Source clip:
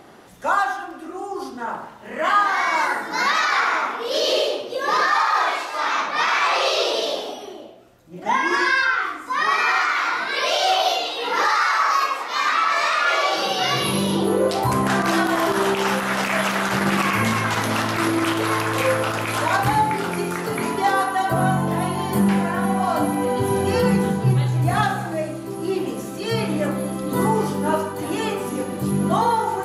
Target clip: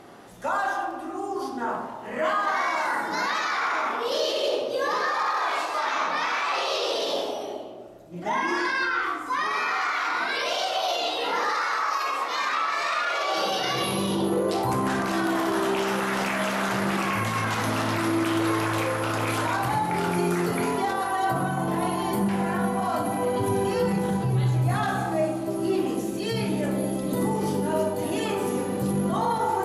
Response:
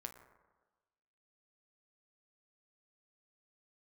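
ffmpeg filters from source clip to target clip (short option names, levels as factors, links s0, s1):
-filter_complex "[0:a]asettb=1/sr,asplit=3[s0][s1][s2];[s0]atrim=end=25.964[s3];[s1]atrim=start=25.96:end=28.25,asetpts=PTS-STARTPTS,afade=t=in:d=0.004:c=qsin,afade=t=out:st=2.286:d=0.004:c=qsin,equalizer=f=1200:w=1.8:g=-8[s4];[s2]atrim=start=28.246[s5];[s3][s4]acrossfade=d=0.004:c1=hsin:c2=qsin[s6];[s6][s5]acrossfade=d=0.004:c1=qsin:c2=hsin,alimiter=limit=0.141:level=0:latency=1:release=12[s7];[1:a]atrim=start_sample=2205,afade=t=out:st=0.37:d=0.01,atrim=end_sample=16758,asetrate=25137,aresample=44100[s8];[s7][s8]afir=irnorm=-1:irlink=0"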